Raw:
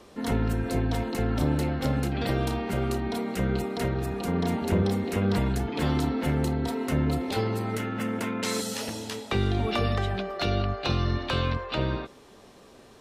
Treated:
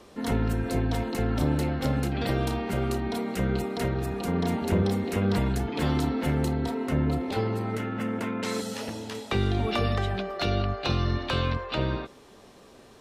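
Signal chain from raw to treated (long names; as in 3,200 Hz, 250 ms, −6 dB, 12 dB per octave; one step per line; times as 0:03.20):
0:06.68–0:09.15: high-shelf EQ 3,600 Hz −8 dB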